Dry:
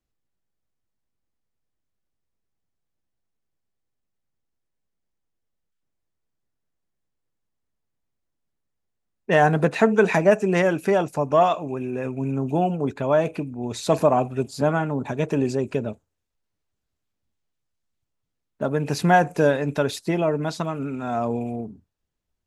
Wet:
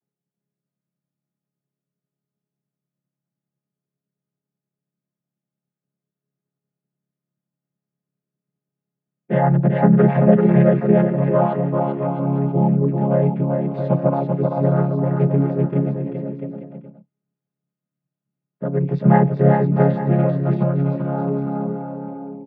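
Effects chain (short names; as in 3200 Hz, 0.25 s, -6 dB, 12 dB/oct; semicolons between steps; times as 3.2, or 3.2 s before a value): chord vocoder major triad, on C#3; air absorption 410 m; bouncing-ball echo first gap 0.39 s, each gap 0.7×, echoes 5; gain +3.5 dB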